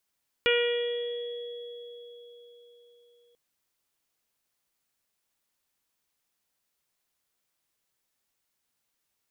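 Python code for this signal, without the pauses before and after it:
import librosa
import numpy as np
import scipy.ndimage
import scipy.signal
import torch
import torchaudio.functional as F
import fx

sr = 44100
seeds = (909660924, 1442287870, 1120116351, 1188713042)

y = fx.additive(sr, length_s=2.89, hz=478.0, level_db=-22.5, upper_db=(-18.0, -6, -7.0, -3.0, -4.5, -9), decay_s=4.44, upper_decays_s=(1.42, 0.91, 1.7, 1.07, 1.23, 4.36))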